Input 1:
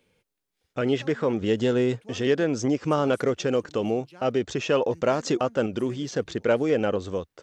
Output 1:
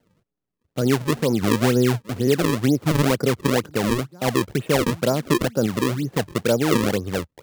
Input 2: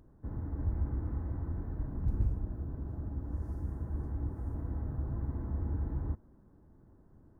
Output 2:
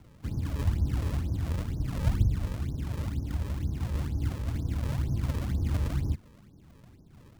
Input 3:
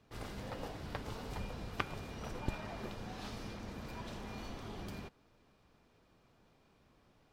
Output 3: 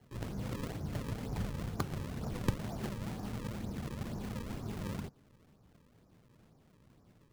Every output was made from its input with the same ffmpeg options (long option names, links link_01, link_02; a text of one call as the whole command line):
ffmpeg -i in.wav -filter_complex "[0:a]lowpass=1300,equalizer=frequency=140:width_type=o:width=2.1:gain=9.5,acrossover=split=110[link_01][link_02];[link_02]acrusher=samples=35:mix=1:aa=0.000001:lfo=1:lforange=56:lforate=2.1[link_03];[link_01][link_03]amix=inputs=2:normalize=0" out.wav